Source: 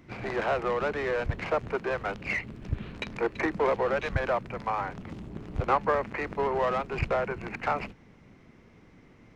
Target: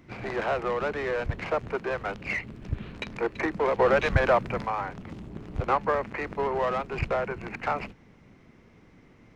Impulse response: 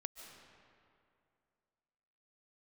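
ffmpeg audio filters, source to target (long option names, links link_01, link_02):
-filter_complex "[0:a]asettb=1/sr,asplit=3[link_01][link_02][link_03];[link_01]atrim=end=3.794[link_04];[link_02]atrim=start=3.79:end=4.66,asetpts=PTS-STARTPTS,afade=type=in:duration=0.004:curve=qsin,afade=type=out:start_time=0.866:duration=0.004:curve=qsin,acontrast=58[link_05];[link_03]atrim=start=4.656[link_06];[link_04][link_05]acrossfade=duration=0.004:curve1=hsin:curve2=qsin[link_07];[link_07][link_06]acrossfade=duration=0.004:curve1=qsin:curve2=hsin"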